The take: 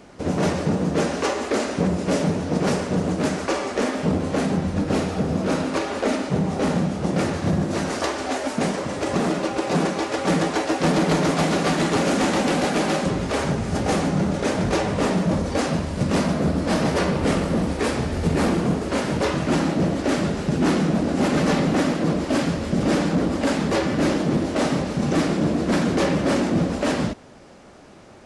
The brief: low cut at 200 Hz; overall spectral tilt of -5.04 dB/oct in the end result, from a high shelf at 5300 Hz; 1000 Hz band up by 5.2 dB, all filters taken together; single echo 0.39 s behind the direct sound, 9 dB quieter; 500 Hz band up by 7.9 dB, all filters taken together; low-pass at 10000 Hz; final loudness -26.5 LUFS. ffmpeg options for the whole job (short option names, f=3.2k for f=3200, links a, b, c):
-af "highpass=200,lowpass=10k,equalizer=f=500:t=o:g=9,equalizer=f=1k:t=o:g=3.5,highshelf=f=5.3k:g=-4,aecho=1:1:390:0.355,volume=-8.5dB"